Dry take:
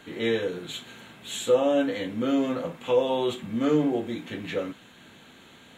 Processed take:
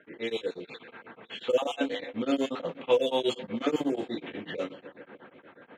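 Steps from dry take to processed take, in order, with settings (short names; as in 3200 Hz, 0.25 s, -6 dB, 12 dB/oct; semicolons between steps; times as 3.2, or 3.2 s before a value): random spectral dropouts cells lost 24%; low-pass opened by the level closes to 1700 Hz, open at -19.5 dBFS; HPF 660 Hz 6 dB/oct; low-pass opened by the level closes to 2000 Hz, open at -25.5 dBFS; dynamic EQ 1400 Hz, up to -7 dB, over -51 dBFS, Q 0.83; AGC gain up to 6.5 dB; on a send: dark delay 0.143 s, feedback 81%, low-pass 1200 Hz, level -19 dB; on the sum: beating tremolo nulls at 8.2 Hz; gain +1.5 dB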